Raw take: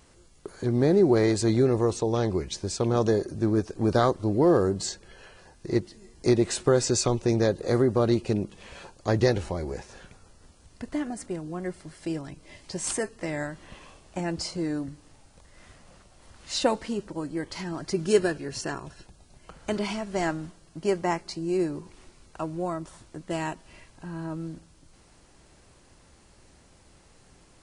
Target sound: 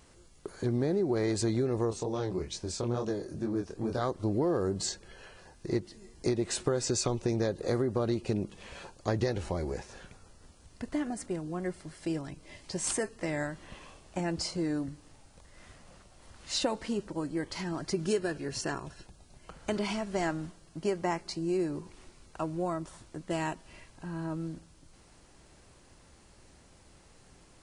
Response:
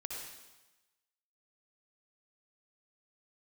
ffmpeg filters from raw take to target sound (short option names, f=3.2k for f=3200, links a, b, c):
-filter_complex "[0:a]acompressor=threshold=-24dB:ratio=6,asplit=3[a][b][c];[a]afade=t=out:st=1.85:d=0.02[d];[b]flanger=delay=22.5:depth=4.6:speed=2.3,afade=t=in:st=1.85:d=0.02,afade=t=out:st=4:d=0.02[e];[c]afade=t=in:st=4:d=0.02[f];[d][e][f]amix=inputs=3:normalize=0,volume=-1.5dB"